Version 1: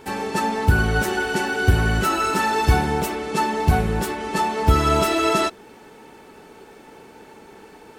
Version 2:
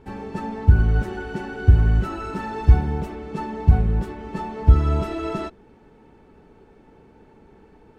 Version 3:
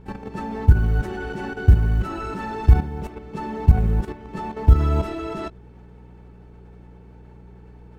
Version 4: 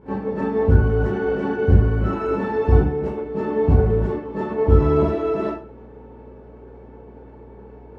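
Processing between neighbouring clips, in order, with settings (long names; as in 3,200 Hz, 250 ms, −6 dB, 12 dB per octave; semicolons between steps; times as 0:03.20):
RIAA equalisation playback; level −10.5 dB
output level in coarse steps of 11 dB; floating-point word with a short mantissa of 6 bits; hum with harmonics 60 Hz, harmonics 3, −49 dBFS −4 dB per octave; level +3.5 dB
resonant band-pass 410 Hz, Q 0.61; convolution reverb RT60 0.40 s, pre-delay 7 ms, DRR −8 dB; level +2 dB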